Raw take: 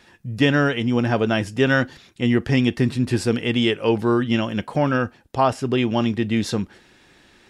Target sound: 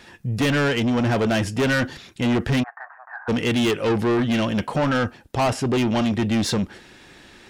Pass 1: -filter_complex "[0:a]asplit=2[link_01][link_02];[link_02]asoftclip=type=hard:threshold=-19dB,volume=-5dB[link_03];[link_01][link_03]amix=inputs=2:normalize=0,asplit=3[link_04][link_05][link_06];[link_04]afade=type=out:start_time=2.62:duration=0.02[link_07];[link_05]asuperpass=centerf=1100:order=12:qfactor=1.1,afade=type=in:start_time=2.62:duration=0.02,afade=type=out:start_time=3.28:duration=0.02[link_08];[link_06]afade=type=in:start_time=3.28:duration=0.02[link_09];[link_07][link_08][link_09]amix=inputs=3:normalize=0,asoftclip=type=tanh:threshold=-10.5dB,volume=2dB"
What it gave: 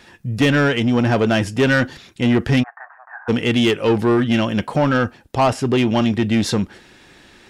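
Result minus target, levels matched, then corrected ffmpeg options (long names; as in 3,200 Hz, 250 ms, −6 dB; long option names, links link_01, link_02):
soft clipping: distortion −9 dB
-filter_complex "[0:a]asplit=2[link_01][link_02];[link_02]asoftclip=type=hard:threshold=-19dB,volume=-5dB[link_03];[link_01][link_03]amix=inputs=2:normalize=0,asplit=3[link_04][link_05][link_06];[link_04]afade=type=out:start_time=2.62:duration=0.02[link_07];[link_05]asuperpass=centerf=1100:order=12:qfactor=1.1,afade=type=in:start_time=2.62:duration=0.02,afade=type=out:start_time=3.28:duration=0.02[link_08];[link_06]afade=type=in:start_time=3.28:duration=0.02[link_09];[link_07][link_08][link_09]amix=inputs=3:normalize=0,asoftclip=type=tanh:threshold=-19dB,volume=2dB"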